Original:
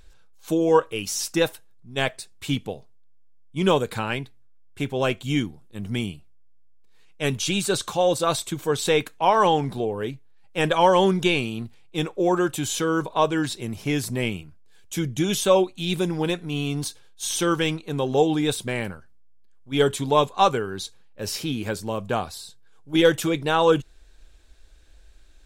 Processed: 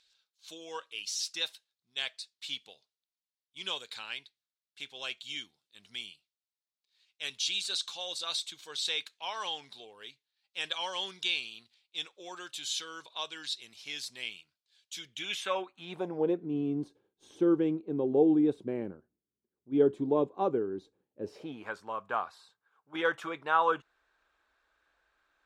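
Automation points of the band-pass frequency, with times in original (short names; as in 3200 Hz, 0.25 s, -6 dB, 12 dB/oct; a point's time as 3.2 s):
band-pass, Q 2.3
14.99 s 4100 Hz
15.83 s 1100 Hz
16.4 s 330 Hz
21.24 s 330 Hz
21.69 s 1200 Hz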